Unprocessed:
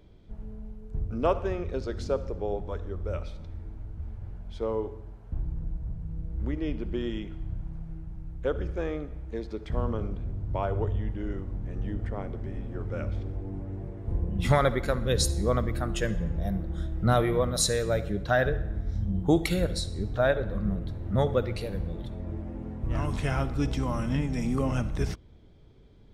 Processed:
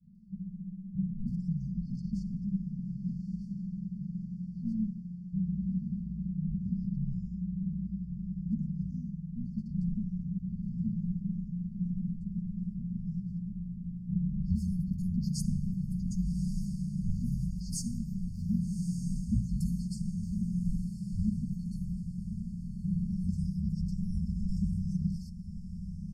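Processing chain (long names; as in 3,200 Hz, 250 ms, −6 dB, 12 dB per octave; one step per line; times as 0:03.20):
high-shelf EQ 2,400 Hz −9.5 dB
mains-hum notches 50/100/150/200/250/300/350/400 Hz
comb filter 4.9 ms, depth 78%
three-band delay without the direct sound lows, mids, highs 30/150 ms, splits 190/4,100 Hz
in parallel at −6 dB: hard clipping −19 dBFS, distortion −18 dB
on the sum: frequency shifter −220 Hz
brick-wall band-stop 240–4,300 Hz
on a send: feedback delay with all-pass diffusion 1,180 ms, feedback 46%, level −9.5 dB
on the sum: level −7.5 dB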